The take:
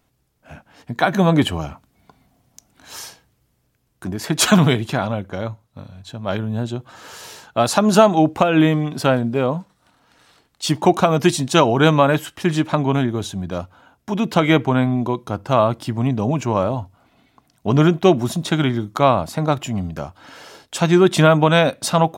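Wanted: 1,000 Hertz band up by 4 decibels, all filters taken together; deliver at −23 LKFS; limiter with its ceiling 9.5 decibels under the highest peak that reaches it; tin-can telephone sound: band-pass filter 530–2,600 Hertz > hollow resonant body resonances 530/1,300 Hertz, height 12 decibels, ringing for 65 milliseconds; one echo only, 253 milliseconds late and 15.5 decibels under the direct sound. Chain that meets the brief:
parametric band 1,000 Hz +6 dB
brickwall limiter −6.5 dBFS
band-pass filter 530–2,600 Hz
single-tap delay 253 ms −15.5 dB
hollow resonant body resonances 530/1,300 Hz, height 12 dB, ringing for 65 ms
level −2 dB

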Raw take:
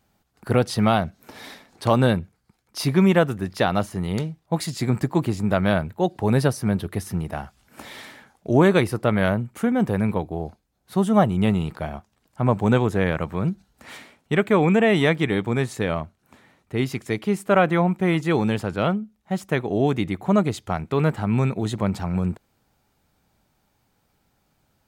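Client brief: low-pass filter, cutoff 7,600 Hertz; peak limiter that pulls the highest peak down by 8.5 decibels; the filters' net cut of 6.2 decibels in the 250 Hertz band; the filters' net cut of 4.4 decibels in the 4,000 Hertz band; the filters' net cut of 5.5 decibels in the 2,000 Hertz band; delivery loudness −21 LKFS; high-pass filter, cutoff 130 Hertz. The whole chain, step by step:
high-pass filter 130 Hz
low-pass filter 7,600 Hz
parametric band 250 Hz −8 dB
parametric band 2,000 Hz −6.5 dB
parametric band 4,000 Hz −3 dB
level +8.5 dB
brickwall limiter −7 dBFS

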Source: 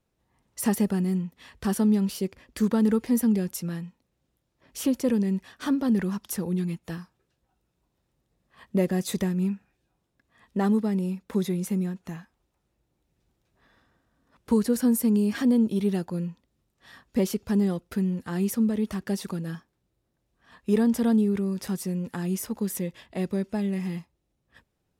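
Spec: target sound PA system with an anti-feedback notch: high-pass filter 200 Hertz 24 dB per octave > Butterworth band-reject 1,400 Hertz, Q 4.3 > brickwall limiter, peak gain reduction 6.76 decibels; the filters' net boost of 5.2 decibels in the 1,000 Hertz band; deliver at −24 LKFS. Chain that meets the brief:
high-pass filter 200 Hz 24 dB per octave
Butterworth band-reject 1,400 Hz, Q 4.3
parametric band 1,000 Hz +7 dB
level +6 dB
brickwall limiter −13 dBFS

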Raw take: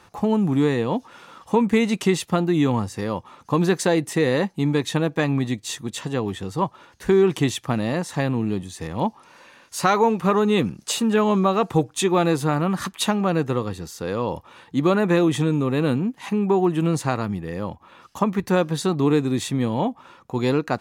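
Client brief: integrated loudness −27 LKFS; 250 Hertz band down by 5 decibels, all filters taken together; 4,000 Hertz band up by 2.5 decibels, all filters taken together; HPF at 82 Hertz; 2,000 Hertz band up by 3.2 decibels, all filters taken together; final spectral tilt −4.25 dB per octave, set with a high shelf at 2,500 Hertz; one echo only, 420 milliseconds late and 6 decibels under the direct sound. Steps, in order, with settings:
high-pass filter 82 Hz
parametric band 250 Hz −7 dB
parametric band 2,000 Hz +6 dB
high-shelf EQ 2,500 Hz −8 dB
parametric band 4,000 Hz +7.5 dB
single-tap delay 420 ms −6 dB
level −3.5 dB

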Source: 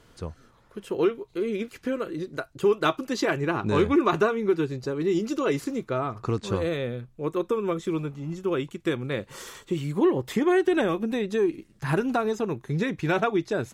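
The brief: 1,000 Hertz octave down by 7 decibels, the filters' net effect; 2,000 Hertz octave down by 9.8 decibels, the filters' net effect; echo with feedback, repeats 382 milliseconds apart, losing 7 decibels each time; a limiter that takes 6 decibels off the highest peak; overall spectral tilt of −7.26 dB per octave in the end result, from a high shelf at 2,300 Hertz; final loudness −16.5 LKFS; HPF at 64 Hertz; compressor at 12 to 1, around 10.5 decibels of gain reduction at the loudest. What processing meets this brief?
high-pass filter 64 Hz
parametric band 1,000 Hz −6 dB
parametric band 2,000 Hz −9 dB
high-shelf EQ 2,300 Hz −4.5 dB
downward compressor 12 to 1, threshold −28 dBFS
brickwall limiter −25 dBFS
repeating echo 382 ms, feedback 45%, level −7 dB
level +17.5 dB

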